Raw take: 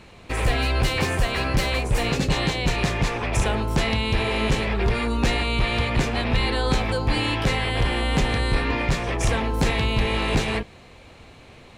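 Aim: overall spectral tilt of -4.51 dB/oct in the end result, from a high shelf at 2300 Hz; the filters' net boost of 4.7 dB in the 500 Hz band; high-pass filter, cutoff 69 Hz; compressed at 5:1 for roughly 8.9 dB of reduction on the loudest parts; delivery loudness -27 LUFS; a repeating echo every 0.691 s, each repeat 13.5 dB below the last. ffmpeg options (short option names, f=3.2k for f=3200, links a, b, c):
-af "highpass=69,equalizer=f=500:t=o:g=5.5,highshelf=f=2.3k:g=3,acompressor=threshold=-27dB:ratio=5,aecho=1:1:691|1382:0.211|0.0444,volume=2.5dB"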